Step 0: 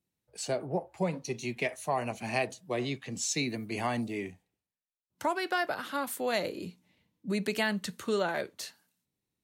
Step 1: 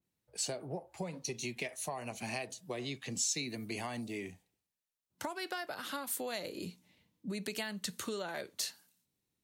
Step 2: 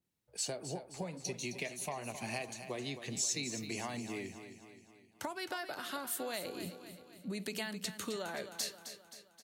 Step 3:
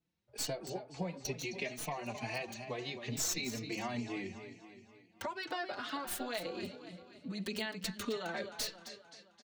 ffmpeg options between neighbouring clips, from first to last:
ffmpeg -i in.wav -af "acompressor=threshold=-37dB:ratio=6,adynamicequalizer=threshold=0.00126:dfrequency=3000:dqfactor=0.7:tfrequency=3000:tqfactor=0.7:attack=5:release=100:ratio=0.375:range=3.5:mode=boostabove:tftype=highshelf" out.wav
ffmpeg -i in.wav -af "aecho=1:1:263|526|789|1052|1315|1578:0.299|0.155|0.0807|0.042|0.0218|0.0114,volume=-1dB" out.wav
ffmpeg -i in.wav -filter_complex "[0:a]acrossover=split=6100[link_01][link_02];[link_02]acrusher=bits=4:dc=4:mix=0:aa=0.000001[link_03];[link_01][link_03]amix=inputs=2:normalize=0,asplit=2[link_04][link_05];[link_05]adelay=4.2,afreqshift=2.2[link_06];[link_04][link_06]amix=inputs=2:normalize=1,volume=4.5dB" out.wav

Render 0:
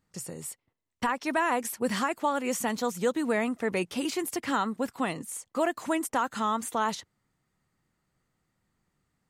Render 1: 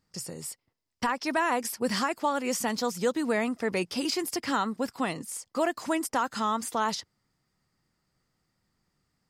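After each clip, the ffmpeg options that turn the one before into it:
ffmpeg -i in.wav -af "equalizer=frequency=5000:width=4.4:gain=12" out.wav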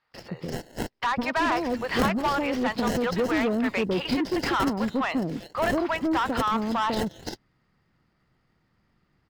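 ffmpeg -i in.wav -filter_complex "[0:a]acrossover=split=590|4900[link_01][link_02][link_03];[link_01]adelay=150[link_04];[link_03]adelay=340[link_05];[link_04][link_02][link_05]amix=inputs=3:normalize=0,acrossover=split=4600[link_06][link_07];[link_06]asoftclip=type=tanh:threshold=-27.5dB[link_08];[link_07]acrusher=samples=37:mix=1:aa=0.000001[link_09];[link_08][link_09]amix=inputs=2:normalize=0,volume=8dB" out.wav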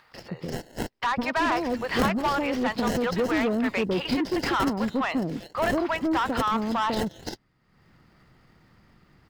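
ffmpeg -i in.wav -af "acompressor=mode=upward:threshold=-46dB:ratio=2.5" out.wav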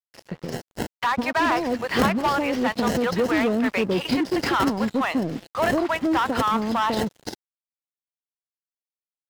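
ffmpeg -i in.wav -af "highpass=61,aeval=exprs='sgn(val(0))*max(abs(val(0))-0.00794,0)':channel_layout=same,volume=4dB" out.wav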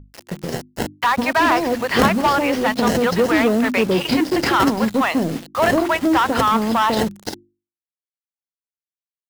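ffmpeg -i in.wav -af "acrusher=bits=6:mix=0:aa=0.000001,aeval=exprs='val(0)+0.00708*(sin(2*PI*50*n/s)+sin(2*PI*2*50*n/s)/2+sin(2*PI*3*50*n/s)/3+sin(2*PI*4*50*n/s)/4+sin(2*PI*5*50*n/s)/5)':channel_layout=same,bandreject=frequency=50:width_type=h:width=6,bandreject=frequency=100:width_type=h:width=6,bandreject=frequency=150:width_type=h:width=6,bandreject=frequency=200:width_type=h:width=6,bandreject=frequency=250:width_type=h:width=6,bandreject=frequency=300:width_type=h:width=6,bandreject=frequency=350:width_type=h:width=6,volume=5.5dB" out.wav

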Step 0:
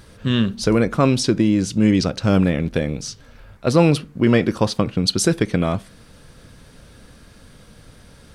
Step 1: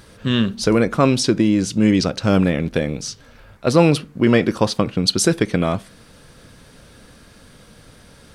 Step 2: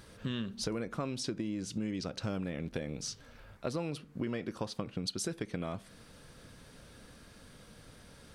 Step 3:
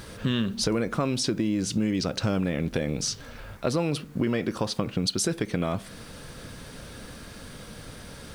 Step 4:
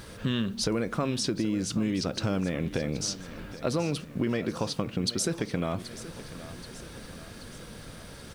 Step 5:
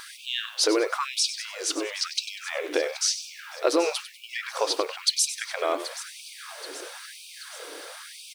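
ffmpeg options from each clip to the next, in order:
ffmpeg -i in.wav -af "lowshelf=frequency=130:gain=-6,volume=2dB" out.wav
ffmpeg -i in.wav -af "acompressor=threshold=-25dB:ratio=6,volume=-8.5dB" out.wav
ffmpeg -i in.wav -filter_complex "[0:a]asplit=2[link_01][link_02];[link_02]alimiter=level_in=8.5dB:limit=-24dB:level=0:latency=1,volume=-8.5dB,volume=-0.5dB[link_03];[link_01][link_03]amix=inputs=2:normalize=0,acrusher=bits=10:mix=0:aa=0.000001,volume=6.5dB" out.wav
ffmpeg -i in.wav -af "aecho=1:1:778|1556|2334|3112|3890:0.178|0.0996|0.0558|0.0312|0.0175,volume=-2.5dB" out.wav
ffmpeg -i in.wav -filter_complex "[0:a]asplit=5[link_01][link_02][link_03][link_04][link_05];[link_02]adelay=97,afreqshift=-64,volume=-12dB[link_06];[link_03]adelay=194,afreqshift=-128,volume=-20.9dB[link_07];[link_04]adelay=291,afreqshift=-192,volume=-29.7dB[link_08];[link_05]adelay=388,afreqshift=-256,volume=-38.6dB[link_09];[link_01][link_06][link_07][link_08][link_09]amix=inputs=5:normalize=0,afftfilt=real='re*gte(b*sr/1024,280*pow(2300/280,0.5+0.5*sin(2*PI*1*pts/sr)))':imag='im*gte(b*sr/1024,280*pow(2300/280,0.5+0.5*sin(2*PI*1*pts/sr)))':win_size=1024:overlap=0.75,volume=7.5dB" out.wav

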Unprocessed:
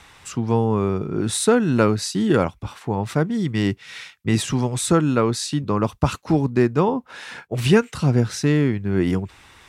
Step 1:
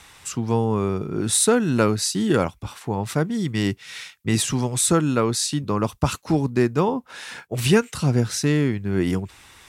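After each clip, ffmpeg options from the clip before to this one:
ffmpeg -i in.wav -af "aemphasis=mode=production:type=cd,volume=-1.5dB" out.wav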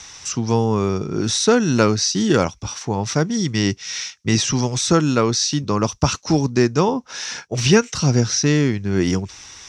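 ffmpeg -i in.wav -filter_complex "[0:a]lowpass=frequency=5800:width_type=q:width=8.1,acrossover=split=3900[link_01][link_02];[link_02]acompressor=threshold=-28dB:ratio=4:attack=1:release=60[link_03];[link_01][link_03]amix=inputs=2:normalize=0,volume=3dB" out.wav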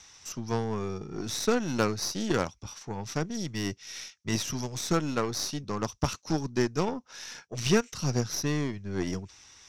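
ffmpeg -i in.wav -af "aeval=exprs='0.891*(cos(1*acos(clip(val(0)/0.891,-1,1)))-cos(1*PI/2))+0.0708*(cos(3*acos(clip(val(0)/0.891,-1,1)))-cos(3*PI/2))+0.0282*(cos(7*acos(clip(val(0)/0.891,-1,1)))-cos(7*PI/2))+0.0447*(cos(8*acos(clip(val(0)/0.891,-1,1)))-cos(8*PI/2))':channel_layout=same,volume=-8.5dB" out.wav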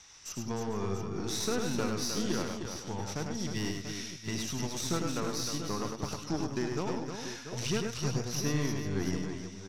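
ffmpeg -i in.wav -af "alimiter=limit=-19.5dB:level=0:latency=1:release=273,aecho=1:1:80|102|152|308|449|688:0.251|0.596|0.106|0.447|0.2|0.299,volume=-2.5dB" out.wav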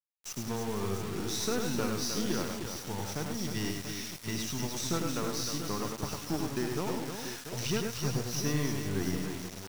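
ffmpeg -i in.wav -af "acrusher=bits=6:mix=0:aa=0.000001" out.wav

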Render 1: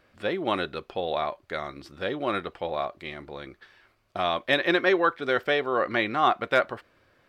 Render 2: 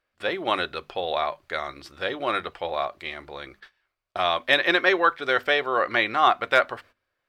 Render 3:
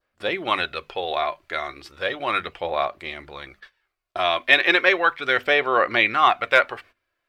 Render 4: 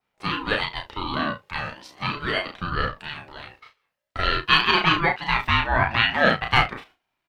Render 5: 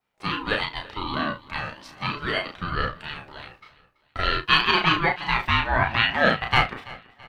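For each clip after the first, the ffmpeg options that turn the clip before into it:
ffmpeg -i in.wav -af "agate=range=-19dB:threshold=-51dB:ratio=16:detection=peak,equalizer=frequency=190:width=0.48:gain=-10,bandreject=frequency=50:width_type=h:width=6,bandreject=frequency=100:width_type=h:width=6,bandreject=frequency=150:width_type=h:width=6,bandreject=frequency=200:width_type=h:width=6,bandreject=frequency=250:width_type=h:width=6,volume=5dB" out.wav
ffmpeg -i in.wav -af "adynamicequalizer=threshold=0.0141:dfrequency=2400:dqfactor=2:tfrequency=2400:tqfactor=2:attack=5:release=100:ratio=0.375:range=3.5:mode=boostabove:tftype=bell,aphaser=in_gain=1:out_gain=1:delay=3:decay=0.35:speed=0.35:type=sinusoidal" out.wav
ffmpeg -i in.wav -af "aecho=1:1:33|69:0.668|0.178,aeval=exprs='val(0)*sin(2*PI*590*n/s+590*0.25/0.43*sin(2*PI*0.43*n/s))':channel_layout=same" out.wav
ffmpeg -i in.wav -af "aecho=1:1:332|664|996:0.0944|0.0406|0.0175,volume=-1dB" out.wav

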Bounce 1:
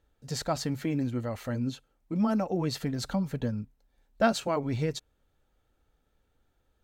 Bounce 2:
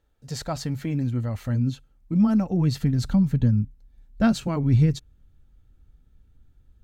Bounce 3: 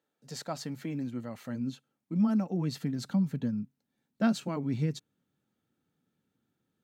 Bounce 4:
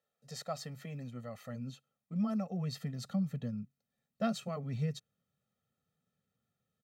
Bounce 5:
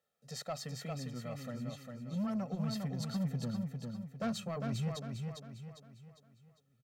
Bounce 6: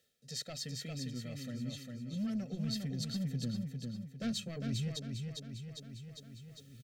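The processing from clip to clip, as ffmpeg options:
ffmpeg -i in.wav -af "asubboost=boost=8.5:cutoff=200" out.wav
ffmpeg -i in.wav -af "highpass=frequency=170:width=0.5412,highpass=frequency=170:width=1.3066,volume=-6dB" out.wav
ffmpeg -i in.wav -af "aecho=1:1:1.6:0.92,volume=-6.5dB" out.wav
ffmpeg -i in.wav -filter_complex "[0:a]asoftclip=type=tanh:threshold=-32.5dB,asplit=2[link_01][link_02];[link_02]aecho=0:1:402|804|1206|1608|2010:0.596|0.25|0.105|0.0441|0.0185[link_03];[link_01][link_03]amix=inputs=2:normalize=0,volume=1.5dB" out.wav
ffmpeg -i in.wav -af "equalizer=frequency=79:width=0.34:gain=-5,areverse,acompressor=mode=upward:threshold=-43dB:ratio=2.5,areverse,firequalizer=gain_entry='entry(100,0);entry(180,-7);entry(260,-2);entry(980,-28);entry(1600,-9);entry(2400,-7);entry(3500,-2);entry(12000,-7)':delay=0.05:min_phase=1,volume=7.5dB" out.wav

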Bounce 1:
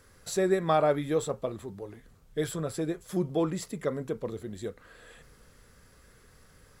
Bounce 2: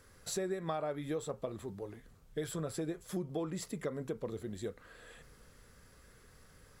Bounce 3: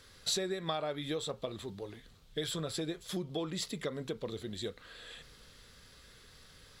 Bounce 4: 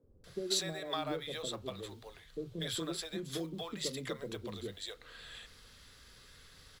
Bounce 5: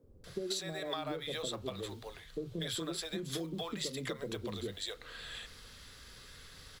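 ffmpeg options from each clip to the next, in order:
ffmpeg -i in.wav -af "acompressor=threshold=-31dB:ratio=6,volume=-2.5dB" out.wav
ffmpeg -i in.wav -af "equalizer=frequency=3700:width=1.2:gain=14.5" out.wav
ffmpeg -i in.wav -filter_complex "[0:a]acrusher=bits=8:mode=log:mix=0:aa=0.000001,acrossover=split=170|540[link_01][link_02][link_03];[link_01]adelay=30[link_04];[link_03]adelay=240[link_05];[link_04][link_02][link_05]amix=inputs=3:normalize=0" out.wav
ffmpeg -i in.wav -af "acompressor=threshold=-39dB:ratio=6,volume=4.5dB" out.wav

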